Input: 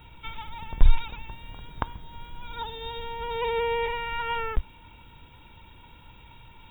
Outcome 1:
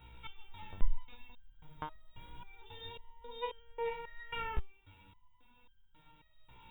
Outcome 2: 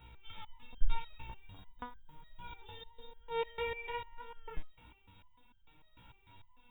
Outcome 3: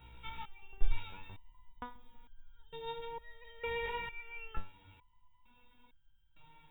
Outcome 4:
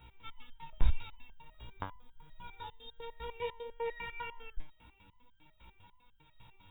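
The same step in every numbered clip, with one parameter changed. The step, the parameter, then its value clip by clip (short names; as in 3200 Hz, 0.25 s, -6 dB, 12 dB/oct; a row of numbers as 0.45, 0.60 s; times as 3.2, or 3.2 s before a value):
stepped resonator, rate: 3.7, 6.7, 2.2, 10 Hz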